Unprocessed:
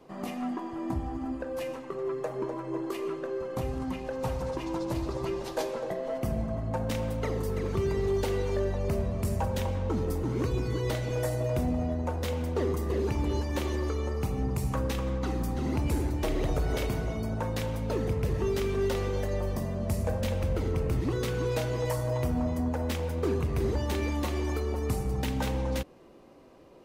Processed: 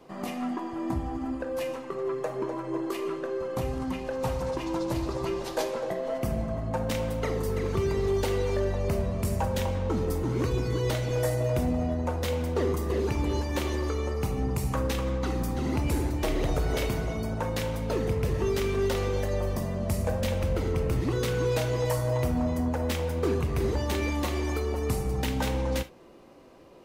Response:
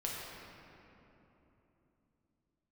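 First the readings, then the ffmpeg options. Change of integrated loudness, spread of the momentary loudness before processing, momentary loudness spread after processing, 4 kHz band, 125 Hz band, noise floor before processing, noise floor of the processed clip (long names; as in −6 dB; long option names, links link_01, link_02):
+2.0 dB, 5 LU, 5 LU, +3.5 dB, +1.0 dB, −40 dBFS, −37 dBFS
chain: -filter_complex "[0:a]asplit=2[link_01][link_02];[1:a]atrim=start_sample=2205,atrim=end_sample=3528,lowshelf=frequency=500:gain=-11.5[link_03];[link_02][link_03]afir=irnorm=-1:irlink=0,volume=-3.5dB[link_04];[link_01][link_04]amix=inputs=2:normalize=0"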